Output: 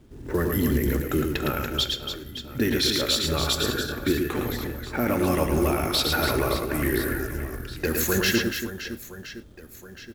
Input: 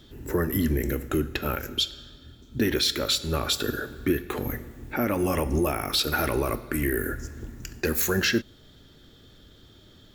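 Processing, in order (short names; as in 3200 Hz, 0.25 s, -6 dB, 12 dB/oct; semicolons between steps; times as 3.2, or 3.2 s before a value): low-pass opened by the level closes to 830 Hz, open at -24.5 dBFS; reverse bouncing-ball echo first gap 0.11 s, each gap 1.6×, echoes 5; companded quantiser 6-bit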